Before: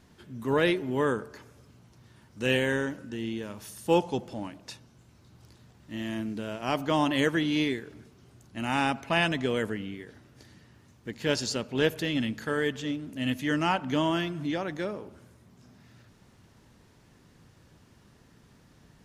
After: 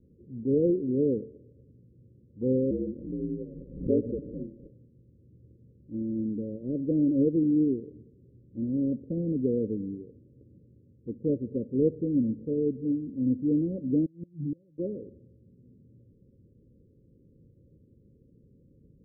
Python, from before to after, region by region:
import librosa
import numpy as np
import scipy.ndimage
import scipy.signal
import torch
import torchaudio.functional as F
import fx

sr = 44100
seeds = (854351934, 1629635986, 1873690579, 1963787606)

y = fx.chain(x, sr, fx.ring_mod(carrier_hz=62.0),
    fx.pre_swell(db_per_s=53.0), at=(2.7, 4.7))
y = fx.chain(y, sr, fx.peak_eq(hz=150.0, db=12.0, octaves=0.65),
    fx.level_steps(step_db=11),
    fx.gate_flip(shuts_db=-25.0, range_db=-27), at=(14.05, 14.78))
y = scipy.signal.sosfilt(scipy.signal.cheby1(8, 1.0, 550.0, 'lowpass', fs=sr, output='sos'), y)
y = fx.dynamic_eq(y, sr, hz=260.0, q=1.5, threshold_db=-43.0, ratio=4.0, max_db=5)